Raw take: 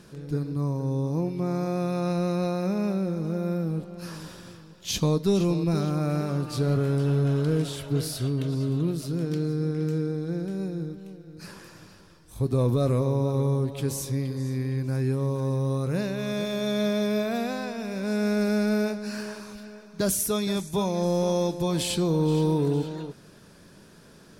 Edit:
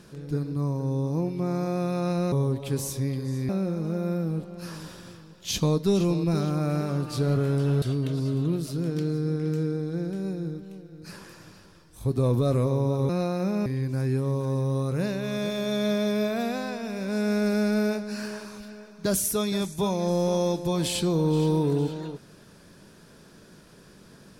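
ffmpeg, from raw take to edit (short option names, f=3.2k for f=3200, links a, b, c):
-filter_complex "[0:a]asplit=6[a][b][c][d][e][f];[a]atrim=end=2.322[g];[b]atrim=start=13.438:end=14.612[h];[c]atrim=start=2.888:end=7.222[i];[d]atrim=start=8.168:end=13.442[j];[e]atrim=start=2.318:end=2.892[k];[f]atrim=start=14.608[l];[g][h]acrossfade=d=0.004:c1=hsin:c2=hsin[m];[m][i]acrossfade=d=0.004:c1=hsin:c2=hsin[n];[n][j]acrossfade=d=0.004:c1=hsin:c2=hsin[o];[o][k]acrossfade=d=0.004:c1=hsin:c2=hsin[p];[p][l]acrossfade=d=0.004:c1=hsin:c2=hsin"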